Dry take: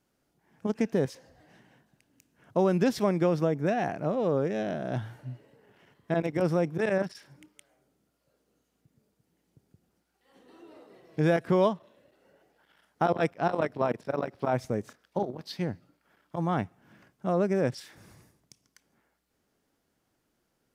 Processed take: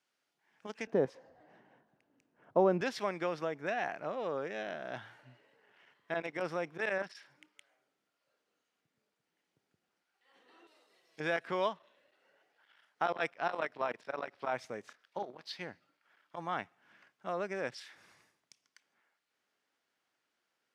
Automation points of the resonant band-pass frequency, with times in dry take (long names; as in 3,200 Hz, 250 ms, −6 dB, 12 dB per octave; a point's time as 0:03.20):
resonant band-pass, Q 0.7
2,800 Hz
from 0:00.87 710 Hz
from 0:02.81 2,100 Hz
from 0:10.67 5,700 Hz
from 0:11.20 2,300 Hz